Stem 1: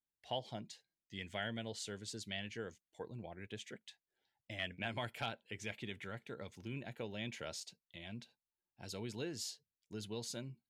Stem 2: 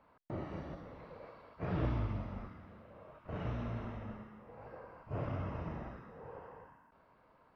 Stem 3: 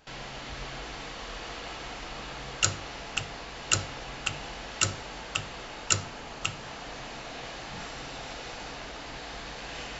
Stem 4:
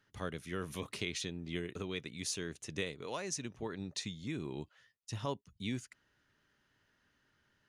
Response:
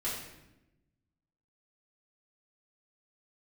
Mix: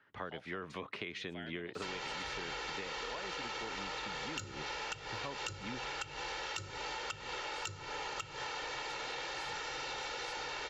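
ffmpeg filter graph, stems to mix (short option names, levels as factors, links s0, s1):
-filter_complex "[0:a]volume=0.119[s0];[2:a]aecho=1:1:2.2:0.8,adelay=1750,volume=0.473[s1];[3:a]lowpass=2100,volume=0.562[s2];[s0][s1][s2]amix=inputs=3:normalize=0,acrossover=split=270[s3][s4];[s4]acompressor=threshold=0.00708:ratio=6[s5];[s3][s5]amix=inputs=2:normalize=0,asplit=2[s6][s7];[s7]highpass=f=720:p=1,volume=10,asoftclip=type=tanh:threshold=0.335[s8];[s6][s8]amix=inputs=2:normalize=0,lowpass=f=5300:p=1,volume=0.501,acompressor=threshold=0.0126:ratio=6"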